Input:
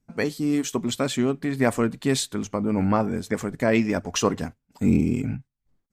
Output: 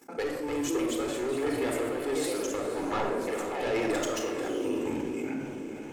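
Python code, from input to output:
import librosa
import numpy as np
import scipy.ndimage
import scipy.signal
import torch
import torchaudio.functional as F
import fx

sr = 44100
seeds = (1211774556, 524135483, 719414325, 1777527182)

y = scipy.signal.sosfilt(scipy.signal.butter(4, 310.0, 'highpass', fs=sr, output='sos'), x)
y = fx.peak_eq(y, sr, hz=4200.0, db=-6.5, octaves=1.3)
y = fx.level_steps(y, sr, step_db=14)
y = fx.echo_pitch(y, sr, ms=318, semitones=2, count=3, db_per_echo=-6.0)
y = 10.0 ** (-30.5 / 20.0) * np.tanh(y / 10.0 ** (-30.5 / 20.0))
y = y * (1.0 - 0.66 / 2.0 + 0.66 / 2.0 * np.cos(2.0 * np.pi * 1.3 * (np.arange(len(y)) / sr)))
y = fx.echo_diffused(y, sr, ms=482, feedback_pct=42, wet_db=-14)
y = fx.room_shoebox(y, sr, seeds[0], volume_m3=3600.0, walls='furnished', distance_m=4.1)
y = fx.env_flatten(y, sr, amount_pct=50)
y = y * 10.0 ** (2.0 / 20.0)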